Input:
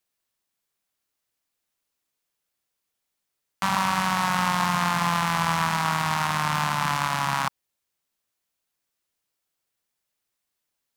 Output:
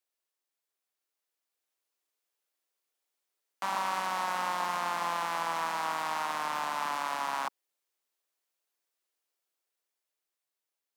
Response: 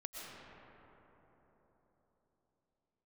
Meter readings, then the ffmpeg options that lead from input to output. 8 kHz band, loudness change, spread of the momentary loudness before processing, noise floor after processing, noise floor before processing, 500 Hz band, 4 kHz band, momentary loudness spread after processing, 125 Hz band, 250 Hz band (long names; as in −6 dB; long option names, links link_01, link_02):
−10.0 dB, −8.5 dB, 3 LU, below −85 dBFS, −82 dBFS, −4.0 dB, −10.0 dB, 2 LU, −25.0 dB, −18.0 dB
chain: -filter_complex "[0:a]lowshelf=frequency=450:gain=4.5,acrossover=split=790[link_01][link_02];[link_02]alimiter=limit=-20.5dB:level=0:latency=1:release=11[link_03];[link_01][link_03]amix=inputs=2:normalize=0,highpass=frequency=340:width=0.5412,highpass=frequency=340:width=1.3066,dynaudnorm=framelen=440:gausssize=7:maxgain=3.5dB,volume=-7.5dB"